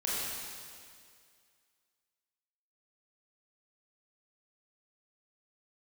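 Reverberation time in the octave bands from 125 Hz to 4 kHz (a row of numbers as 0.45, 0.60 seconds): 2.1, 2.1, 2.2, 2.1, 2.1, 2.1 seconds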